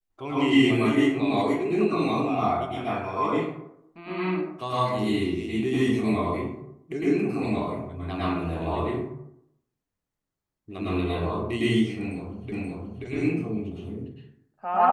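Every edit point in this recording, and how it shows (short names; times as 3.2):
12.52 repeat of the last 0.53 s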